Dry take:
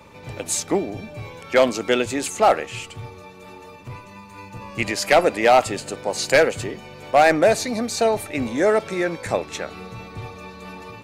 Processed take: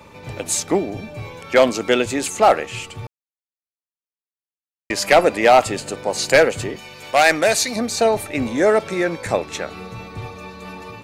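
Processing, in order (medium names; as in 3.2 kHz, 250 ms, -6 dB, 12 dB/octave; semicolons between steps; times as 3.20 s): 3.07–4.90 s: mute; 6.76–7.76 s: tilt shelf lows -6.5 dB, about 1.3 kHz; trim +2.5 dB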